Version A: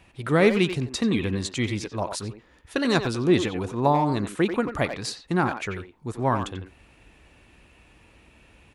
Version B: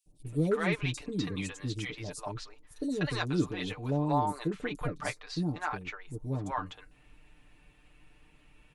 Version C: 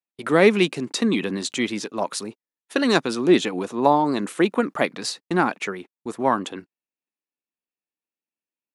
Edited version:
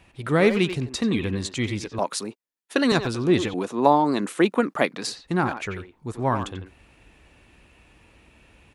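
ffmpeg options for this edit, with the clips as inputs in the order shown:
-filter_complex "[2:a]asplit=2[a][b];[0:a]asplit=3[c][d][e];[c]atrim=end=1.992[f];[a]atrim=start=1.988:end=2.922[g];[d]atrim=start=2.918:end=3.542[h];[b]atrim=start=3.538:end=5.072[i];[e]atrim=start=5.068[j];[f][g]acrossfade=d=0.004:c1=hsin:c2=hsin[k];[k][h]acrossfade=d=0.004:c1=hsin:c2=hsin[l];[l][i]acrossfade=d=0.004:c1=hsin:c2=hsin[m];[m][j]acrossfade=d=0.004:c1=hsin:c2=hsin"

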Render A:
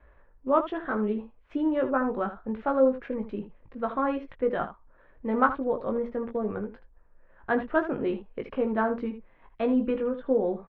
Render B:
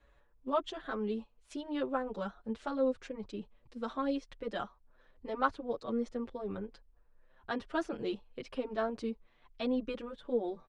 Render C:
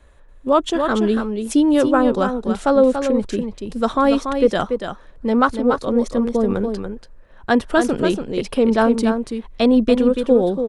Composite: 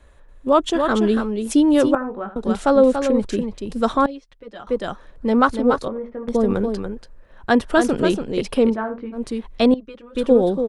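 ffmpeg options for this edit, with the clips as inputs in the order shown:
-filter_complex "[0:a]asplit=3[a][b][c];[1:a]asplit=2[d][e];[2:a]asplit=6[f][g][h][i][j][k];[f]atrim=end=1.952[l];[a]atrim=start=1.948:end=2.362[m];[g]atrim=start=2.358:end=4.062[n];[d]atrim=start=4.058:end=4.672[o];[h]atrim=start=4.668:end=5.882[p];[b]atrim=start=5.878:end=6.282[q];[i]atrim=start=6.278:end=8.77[r];[c]atrim=start=8.67:end=9.22[s];[j]atrim=start=9.12:end=9.742[t];[e]atrim=start=9.738:end=10.152[u];[k]atrim=start=10.148[v];[l][m]acrossfade=d=0.004:c1=hsin:c2=hsin[w];[w][n]acrossfade=d=0.004:c1=hsin:c2=hsin[x];[x][o]acrossfade=d=0.004:c1=hsin:c2=hsin[y];[y][p]acrossfade=d=0.004:c1=hsin:c2=hsin[z];[z][q]acrossfade=d=0.004:c1=hsin:c2=hsin[aa];[aa][r]acrossfade=d=0.004:c1=hsin:c2=hsin[ab];[ab][s]acrossfade=d=0.1:c1=tri:c2=tri[ac];[ac][t]acrossfade=d=0.1:c1=tri:c2=tri[ad];[ad][u]acrossfade=d=0.004:c1=hsin:c2=hsin[ae];[ae][v]acrossfade=d=0.004:c1=hsin:c2=hsin"

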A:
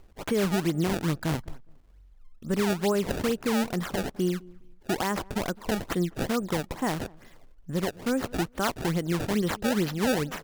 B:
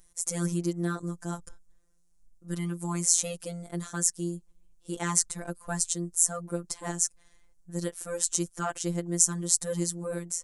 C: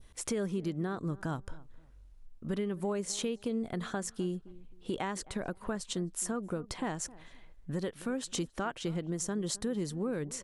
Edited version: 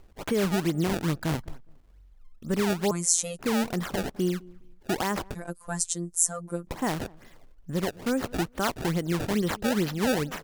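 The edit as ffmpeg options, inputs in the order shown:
-filter_complex "[1:a]asplit=2[a][b];[0:a]asplit=3[c][d][e];[c]atrim=end=2.912[f];[a]atrim=start=2.908:end=3.392[g];[d]atrim=start=3.388:end=5.352[h];[b]atrim=start=5.348:end=6.672[i];[e]atrim=start=6.668[j];[f][g]acrossfade=d=0.004:c1=hsin:c2=hsin[k];[k][h]acrossfade=d=0.004:c1=hsin:c2=hsin[l];[l][i]acrossfade=d=0.004:c1=hsin:c2=hsin[m];[m][j]acrossfade=d=0.004:c1=hsin:c2=hsin"

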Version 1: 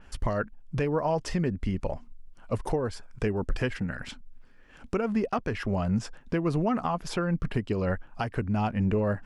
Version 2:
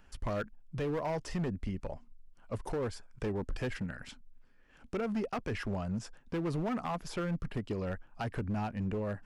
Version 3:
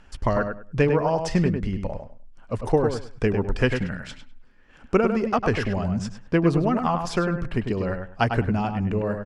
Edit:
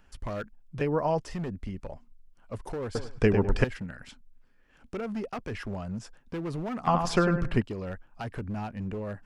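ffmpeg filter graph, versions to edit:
-filter_complex "[2:a]asplit=2[a][b];[1:a]asplit=4[c][d][e][f];[c]atrim=end=0.812[g];[0:a]atrim=start=0.808:end=1.212[h];[d]atrim=start=1.208:end=2.952[i];[a]atrim=start=2.948:end=3.642[j];[e]atrim=start=3.638:end=6.872[k];[b]atrim=start=6.868:end=7.622[l];[f]atrim=start=7.618[m];[g][h]acrossfade=d=0.004:c1=hsin:c2=hsin[n];[n][i]acrossfade=d=0.004:c1=hsin:c2=hsin[o];[o][j]acrossfade=d=0.004:c1=hsin:c2=hsin[p];[p][k]acrossfade=d=0.004:c1=hsin:c2=hsin[q];[q][l]acrossfade=d=0.004:c1=hsin:c2=hsin[r];[r][m]acrossfade=d=0.004:c1=hsin:c2=hsin"

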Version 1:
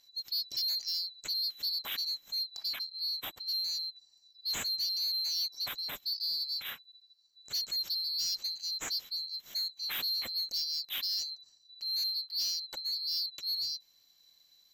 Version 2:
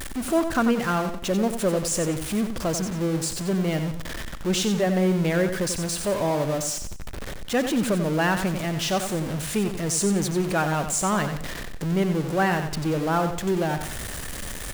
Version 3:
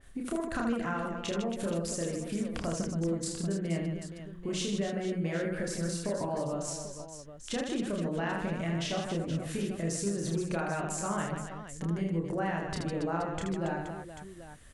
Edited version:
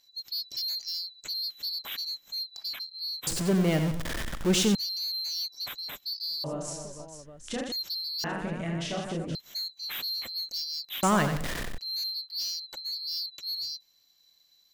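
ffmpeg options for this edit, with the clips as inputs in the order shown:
-filter_complex "[1:a]asplit=2[a][b];[2:a]asplit=2[c][d];[0:a]asplit=5[e][f][g][h][i];[e]atrim=end=3.272[j];[a]atrim=start=3.268:end=4.752[k];[f]atrim=start=4.748:end=6.442[l];[c]atrim=start=6.438:end=7.722[m];[g]atrim=start=7.718:end=8.242[n];[d]atrim=start=8.238:end=9.352[o];[h]atrim=start=9.348:end=11.032[p];[b]atrim=start=11.028:end=11.782[q];[i]atrim=start=11.778[r];[j][k]acrossfade=d=0.004:c1=hsin:c2=hsin[s];[s][l]acrossfade=d=0.004:c1=hsin:c2=hsin[t];[t][m]acrossfade=d=0.004:c1=hsin:c2=hsin[u];[u][n]acrossfade=d=0.004:c1=hsin:c2=hsin[v];[v][o]acrossfade=d=0.004:c1=hsin:c2=hsin[w];[w][p]acrossfade=d=0.004:c1=hsin:c2=hsin[x];[x][q]acrossfade=d=0.004:c1=hsin:c2=hsin[y];[y][r]acrossfade=d=0.004:c1=hsin:c2=hsin"

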